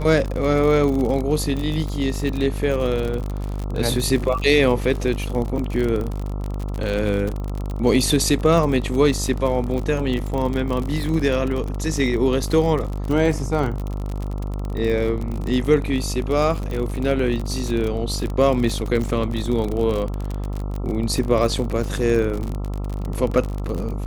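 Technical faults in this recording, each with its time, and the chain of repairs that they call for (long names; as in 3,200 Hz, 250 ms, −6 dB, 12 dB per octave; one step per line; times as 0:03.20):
mains buzz 50 Hz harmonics 27 −26 dBFS
surface crackle 45 per second −24 dBFS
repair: click removal
hum removal 50 Hz, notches 27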